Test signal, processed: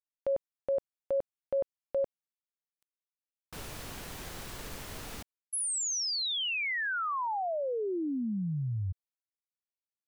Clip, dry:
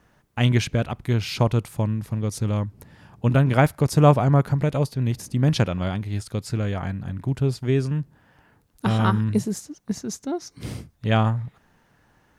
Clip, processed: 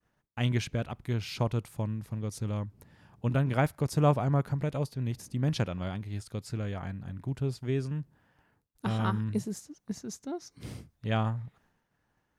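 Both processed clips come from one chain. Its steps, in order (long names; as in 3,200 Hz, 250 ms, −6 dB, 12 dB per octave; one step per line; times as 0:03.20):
downward expander −54 dBFS
level −9 dB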